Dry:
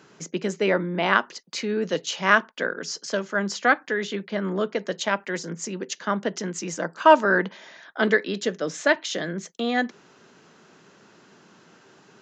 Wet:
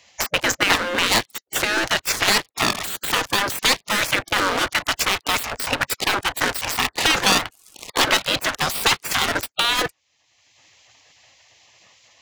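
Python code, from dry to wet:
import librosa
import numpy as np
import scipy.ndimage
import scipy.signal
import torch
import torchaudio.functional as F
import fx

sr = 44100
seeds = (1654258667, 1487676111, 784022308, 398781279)

y = fx.level_steps(x, sr, step_db=10)
y = fx.peak_eq(y, sr, hz=1400.0, db=8.0, octaves=0.59)
y = fx.leveller(y, sr, passes=5)
y = fx.spec_gate(y, sr, threshold_db=-15, keep='weak')
y = fx.band_squash(y, sr, depth_pct=70)
y = F.gain(torch.from_numpy(y), 2.0).numpy()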